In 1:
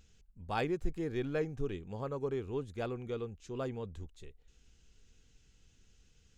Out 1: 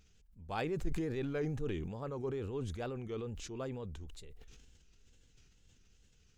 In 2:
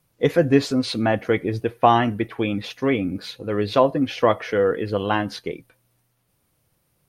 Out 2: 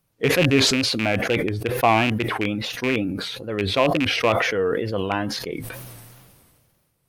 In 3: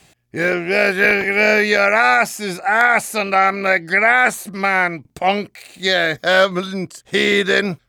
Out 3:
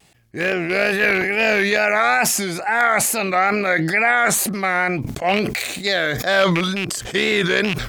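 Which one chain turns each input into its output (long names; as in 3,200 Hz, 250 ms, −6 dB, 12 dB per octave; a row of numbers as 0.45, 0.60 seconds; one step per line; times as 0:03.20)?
loose part that buzzes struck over −23 dBFS, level −10 dBFS
tape wow and flutter 100 cents
level that may fall only so fast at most 29 dB per second
level −3.5 dB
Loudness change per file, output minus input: −1.5, 0.0, −2.0 LU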